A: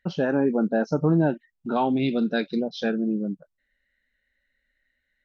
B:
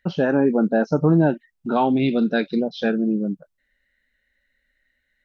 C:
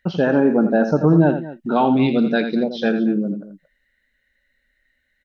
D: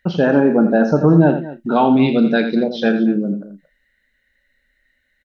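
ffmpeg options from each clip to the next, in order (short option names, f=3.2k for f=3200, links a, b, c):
-filter_complex "[0:a]acrossover=split=4300[a][b];[b]acompressor=threshold=-54dB:ratio=4:attack=1:release=60[c];[a][c]amix=inputs=2:normalize=0,volume=4dB"
-af "aecho=1:1:84|227:0.335|0.141,volume=2dB"
-filter_complex "[0:a]asplit=2[a][b];[b]adelay=35,volume=-13dB[c];[a][c]amix=inputs=2:normalize=0,volume=2.5dB"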